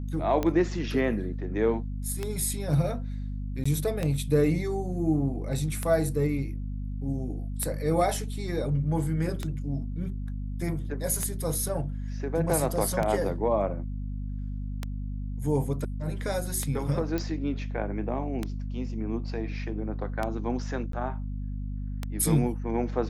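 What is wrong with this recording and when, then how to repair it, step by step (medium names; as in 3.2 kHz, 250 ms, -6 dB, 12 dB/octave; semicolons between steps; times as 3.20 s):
hum 50 Hz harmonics 5 -33 dBFS
tick 33 1/3 rpm -15 dBFS
3.64–3.65 s: dropout 15 ms
17.18 s: pop -17 dBFS
20.92–20.93 s: dropout 13 ms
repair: de-click; de-hum 50 Hz, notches 5; interpolate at 3.64 s, 15 ms; interpolate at 20.92 s, 13 ms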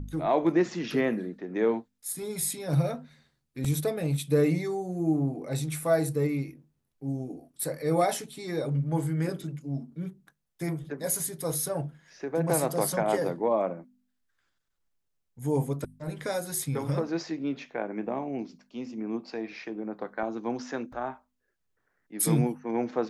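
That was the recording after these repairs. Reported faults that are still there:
nothing left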